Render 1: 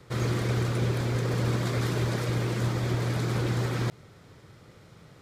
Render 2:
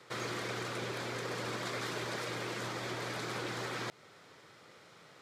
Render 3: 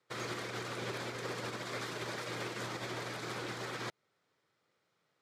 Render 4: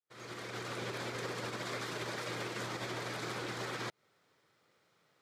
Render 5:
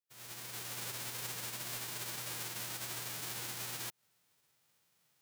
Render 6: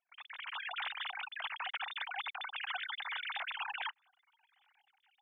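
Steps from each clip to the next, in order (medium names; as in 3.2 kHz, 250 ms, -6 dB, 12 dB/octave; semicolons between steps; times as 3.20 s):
frequency weighting A; compression 1.5:1, threshold -41 dBFS, peak gain reduction 4 dB
peak limiter -30.5 dBFS, peak gain reduction 4.5 dB; upward expansion 2.5:1, over -54 dBFS; trim +2 dB
fade-in on the opening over 1.30 s; compression, threshold -43 dBFS, peak gain reduction 7.5 dB; trim +6.5 dB
formants flattened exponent 0.1; trim -2 dB
formants replaced by sine waves; trim +1 dB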